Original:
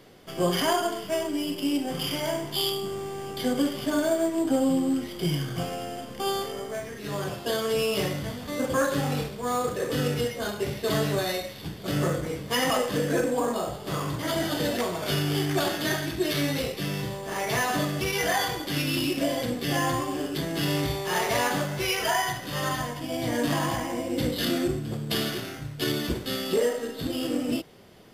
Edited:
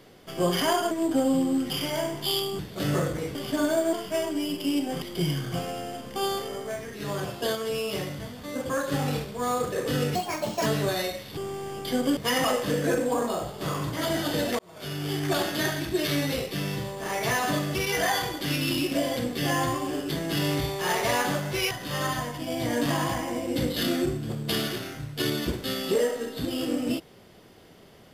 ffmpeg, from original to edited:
-filter_complex "[0:a]asplit=15[s0][s1][s2][s3][s4][s5][s6][s7][s8][s9][s10][s11][s12][s13][s14];[s0]atrim=end=0.912[s15];[s1]atrim=start=4.268:end=5.062[s16];[s2]atrim=start=1.998:end=2.892[s17];[s3]atrim=start=11.668:end=12.432[s18];[s4]atrim=start=3.688:end=4.272[s19];[s5]atrim=start=0.908:end=2.002[s20];[s6]atrim=start=5.058:end=7.592[s21];[s7]atrim=start=7.588:end=8.962,asetpts=PTS-STARTPTS,volume=0.631[s22];[s8]atrim=start=8.958:end=10.194[s23];[s9]atrim=start=10.19:end=10.96,asetpts=PTS-STARTPTS,asetrate=66591,aresample=44100,atrim=end_sample=22488,asetpts=PTS-STARTPTS[s24];[s10]atrim=start=10.956:end=11.672[s25];[s11]atrim=start=2.888:end=3.692[s26];[s12]atrim=start=12.428:end=14.85,asetpts=PTS-STARTPTS,afade=t=out:st=2.418:d=0.004:c=hsin[s27];[s13]atrim=start=14.85:end=21.972,asetpts=PTS-STARTPTS,afade=t=in:d=0.78[s28];[s14]atrim=start=22.328[s29];[s15][s16]acrossfade=d=0.004:c1=hsin:c2=hsin[s30];[s30][s17]acrossfade=d=0.004:c1=hsin:c2=hsin[s31];[s31][s18]acrossfade=d=0.004:c1=hsin:c2=hsin[s32];[s32][s19]acrossfade=d=0.004:c1=hsin:c2=hsin[s33];[s33][s20]acrossfade=d=0.004:c1=hsin:c2=hsin[s34];[s34][s21]acrossfade=d=0.004:c1=hsin:c2=hsin[s35];[s35][s22]acrossfade=d=0.004:c1=hsin:c2=hsin[s36];[s36][s23]acrossfade=d=0.004:c1=hsin:c2=hsin[s37];[s37][s24]acrossfade=d=0.004:c1=hsin:c2=hsin[s38];[s38][s25]acrossfade=d=0.004:c1=hsin:c2=hsin[s39];[s39][s26]acrossfade=d=0.004:c1=hsin:c2=hsin[s40];[s27][s28]concat=n=2:v=0:a=1[s41];[s40][s41]acrossfade=d=0.004:c1=hsin:c2=hsin[s42];[s42][s29]acrossfade=d=0.004:c1=hsin:c2=hsin"

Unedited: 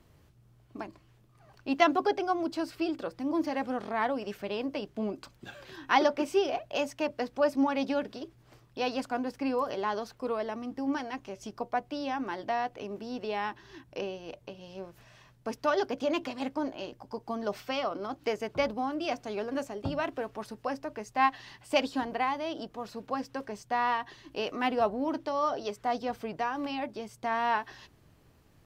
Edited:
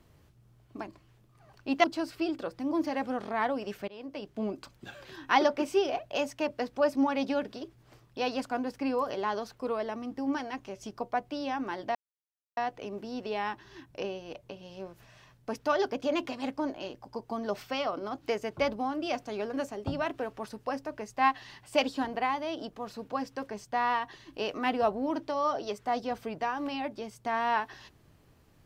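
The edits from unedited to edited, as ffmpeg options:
-filter_complex "[0:a]asplit=4[s0][s1][s2][s3];[s0]atrim=end=1.842[s4];[s1]atrim=start=2.438:end=4.48,asetpts=PTS-STARTPTS,afade=t=out:st=2.038:d=0.004:c=hsin:silence=0.112202[s5];[s2]atrim=start=4.48:end=12.55,asetpts=PTS-STARTPTS,afade=t=in:d=0.56:silence=0.112202,afade=t=out:st=8.066:d=0.004:c=hsin,apad=pad_dur=0.62[s6];[s3]atrim=start=12.55,asetpts=PTS-STARTPTS,afade=t=in:d=0.004:c=hsin[s7];[s5][s6][s7]concat=n=3:v=0:a=1[s8];[s4][s8]acrossfade=d=0.004:c1=hsin:c2=hsin"

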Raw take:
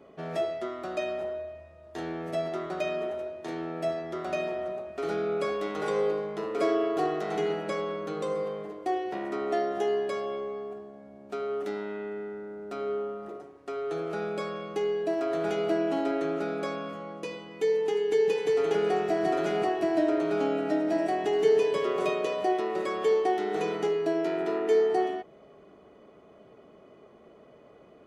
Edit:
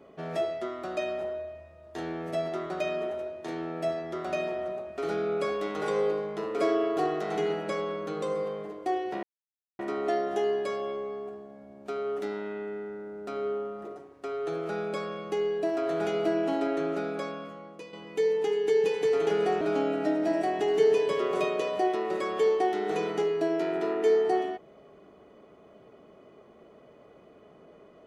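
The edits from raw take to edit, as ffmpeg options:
-filter_complex "[0:a]asplit=4[s0][s1][s2][s3];[s0]atrim=end=9.23,asetpts=PTS-STARTPTS,afade=t=out:st=9.226:d=0.004:c=hsin,apad=pad_dur=0.56[s4];[s1]atrim=start=9.23:end=17.37,asetpts=PTS-STARTPTS,afade=t=in:d=0.004:c=hsin,afade=t=out:st=7.17:d=0.97:silence=0.334965[s5];[s2]atrim=start=17.37:end=19.052,asetpts=PTS-STARTPTS,afade=t=in:d=0.004:c=hsin:silence=0.334965[s6];[s3]atrim=start=20.258[s7];[s4][s5][s6]concat=n=3:v=0:a=1[s8];[s8][s7]acrossfade=d=0.004:c1=hsin:c2=hsin"

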